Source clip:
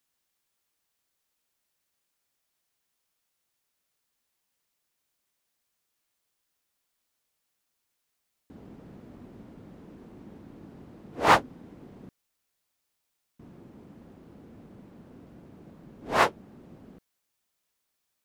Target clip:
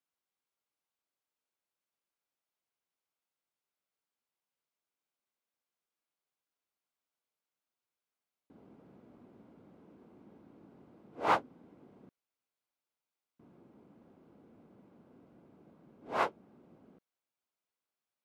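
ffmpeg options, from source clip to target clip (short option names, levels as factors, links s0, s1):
-af "highpass=f=260:p=1,highshelf=f=3300:g=-12,bandreject=f=1800:w=10,volume=0.447"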